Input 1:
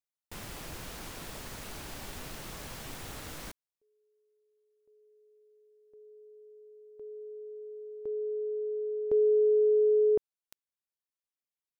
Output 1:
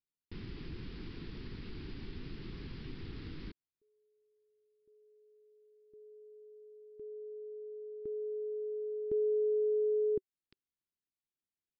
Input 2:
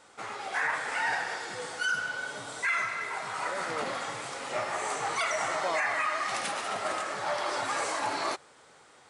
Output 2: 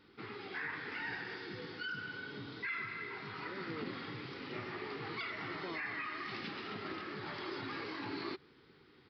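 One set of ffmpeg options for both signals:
ffmpeg -i in.wav -filter_complex "[0:a]firequalizer=gain_entry='entry(380,0);entry(590,-24);entry(990,-16);entry(2000,-10)':delay=0.05:min_phase=1,asplit=2[link_01][link_02];[link_02]acompressor=threshold=-45dB:ratio=6:release=152:detection=rms,volume=2dB[link_03];[link_01][link_03]amix=inputs=2:normalize=0,aresample=11025,aresample=44100,volume=-3.5dB" out.wav

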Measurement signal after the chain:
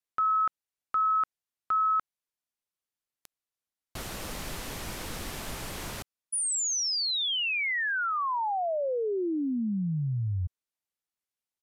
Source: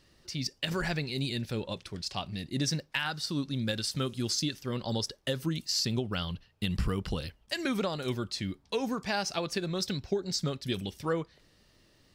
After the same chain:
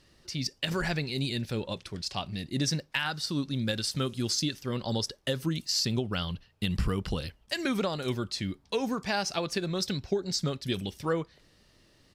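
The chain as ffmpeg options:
ffmpeg -i in.wav -af "aresample=32000,aresample=44100,volume=1.5dB" out.wav

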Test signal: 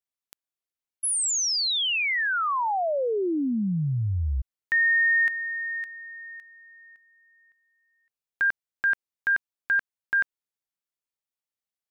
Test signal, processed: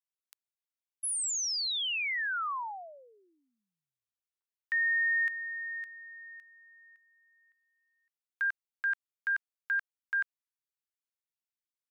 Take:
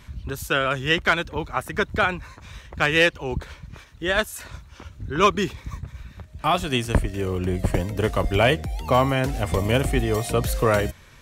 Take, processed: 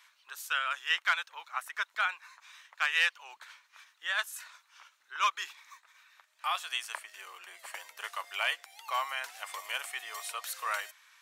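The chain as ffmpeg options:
ffmpeg -i in.wav -af "highpass=frequency=1000:width=0.5412,highpass=frequency=1000:width=1.3066,volume=-7dB" out.wav

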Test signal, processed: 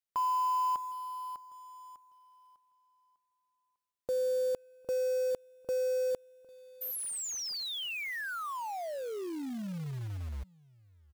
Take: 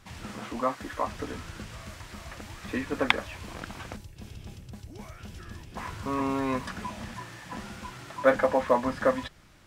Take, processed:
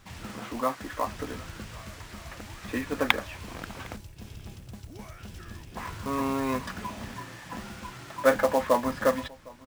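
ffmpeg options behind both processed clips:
ffmpeg -i in.wav -filter_complex "[0:a]asplit=2[link_01][link_02];[link_02]adelay=758,volume=-23dB,highshelf=frequency=4000:gain=-17.1[link_03];[link_01][link_03]amix=inputs=2:normalize=0,acrusher=bits=4:mode=log:mix=0:aa=0.000001" out.wav

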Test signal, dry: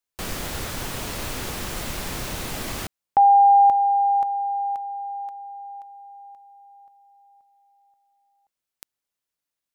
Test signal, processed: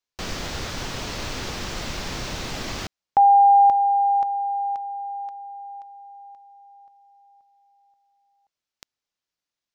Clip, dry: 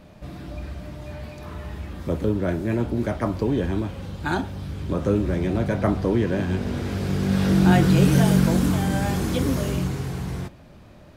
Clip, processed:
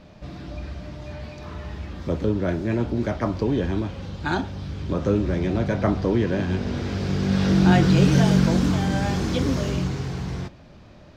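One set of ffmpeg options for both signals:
ffmpeg -i in.wav -af "highshelf=frequency=7800:width_type=q:width=1.5:gain=-12" out.wav

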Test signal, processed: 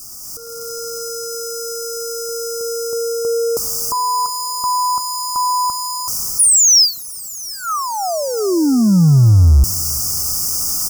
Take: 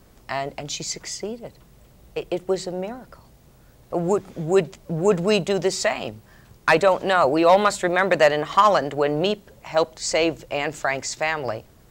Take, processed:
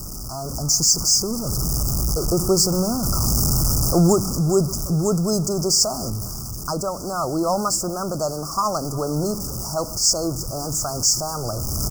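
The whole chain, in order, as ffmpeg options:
ffmpeg -i in.wav -filter_complex "[0:a]aeval=exprs='val(0)+0.5*0.0531*sgn(val(0))':channel_layout=same,equalizer=frequency=250:width_type=o:width=1:gain=-3,equalizer=frequency=500:width_type=o:width=1:gain=-11,equalizer=frequency=1000:width_type=o:width=1:gain=-11,equalizer=frequency=2000:width_type=o:width=1:gain=7,equalizer=frequency=4000:width_type=o:width=1:gain=9,asplit=2[link_01][link_02];[link_02]adelay=360,lowpass=frequency=2000:poles=1,volume=-22dB,asplit=2[link_03][link_04];[link_04]adelay=360,lowpass=frequency=2000:poles=1,volume=0.41,asplit=2[link_05][link_06];[link_06]adelay=360,lowpass=frequency=2000:poles=1,volume=0.41[link_07];[link_03][link_05][link_07]amix=inputs=3:normalize=0[link_08];[link_01][link_08]amix=inputs=2:normalize=0,dynaudnorm=framelen=110:gausssize=9:maxgain=15dB,asuperstop=centerf=2600:order=20:qfactor=0.7" out.wav

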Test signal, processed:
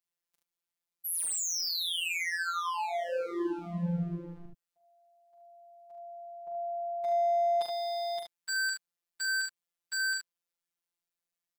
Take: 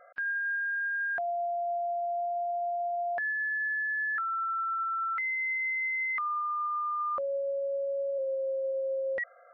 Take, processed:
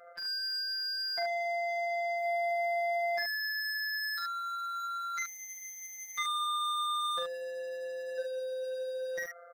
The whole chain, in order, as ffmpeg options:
ffmpeg -i in.wav -af "aeval=exprs='0.0237*(abs(mod(val(0)/0.0237+3,4)-2)-1)':channel_layout=same,aecho=1:1:42|73:0.562|0.562,afftfilt=real='hypot(re,im)*cos(PI*b)':imag='0':win_size=1024:overlap=0.75,volume=4dB" out.wav

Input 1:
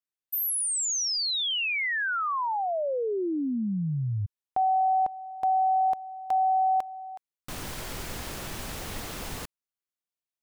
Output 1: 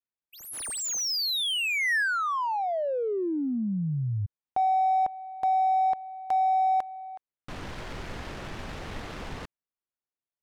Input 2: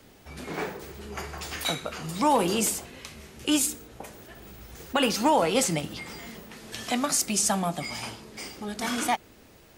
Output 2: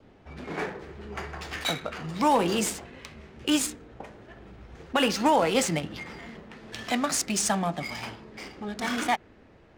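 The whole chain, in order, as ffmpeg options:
ffmpeg -i in.wav -af "adynamicequalizer=threshold=0.00501:dfrequency=1800:dqfactor=3.3:tfrequency=1800:tqfactor=3.3:attack=5:release=100:ratio=0.375:range=2:mode=boostabove:tftype=bell,adynamicsmooth=sensitivity=8:basefreq=2300" out.wav

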